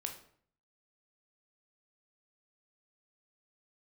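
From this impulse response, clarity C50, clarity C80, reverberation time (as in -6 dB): 9.0 dB, 13.0 dB, 0.55 s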